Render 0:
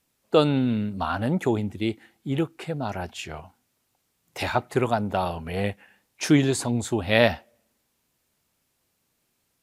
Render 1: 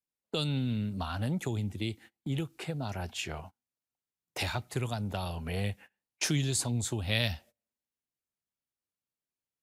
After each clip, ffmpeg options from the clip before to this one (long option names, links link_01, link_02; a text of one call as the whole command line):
ffmpeg -i in.wav -filter_complex "[0:a]agate=range=-25dB:threshold=-44dB:ratio=16:detection=peak,acrossover=split=140|3000[link_01][link_02][link_03];[link_02]acompressor=threshold=-36dB:ratio=6[link_04];[link_01][link_04][link_03]amix=inputs=3:normalize=0" out.wav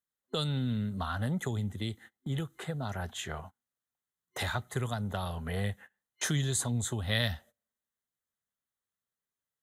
ffmpeg -i in.wav -af "superequalizer=6b=0.562:10b=1.58:11b=1.58:12b=0.398:14b=0.355" out.wav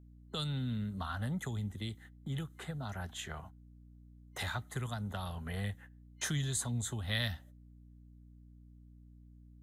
ffmpeg -i in.wav -filter_complex "[0:a]acrossover=split=330|640|1800[link_01][link_02][link_03][link_04];[link_02]acompressor=threshold=-54dB:ratio=6[link_05];[link_01][link_05][link_03][link_04]amix=inputs=4:normalize=0,aeval=exprs='val(0)+0.00282*(sin(2*PI*60*n/s)+sin(2*PI*2*60*n/s)/2+sin(2*PI*3*60*n/s)/3+sin(2*PI*4*60*n/s)/4+sin(2*PI*5*60*n/s)/5)':channel_layout=same,volume=-4dB" out.wav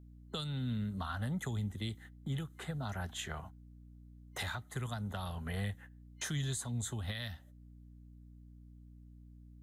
ffmpeg -i in.wav -af "alimiter=level_in=5.5dB:limit=-24dB:level=0:latency=1:release=396,volume=-5.5dB,volume=1.5dB" out.wav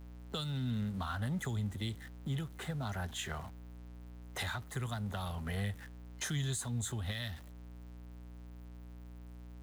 ffmpeg -i in.wav -af "aeval=exprs='val(0)+0.5*0.00355*sgn(val(0))':channel_layout=same" out.wav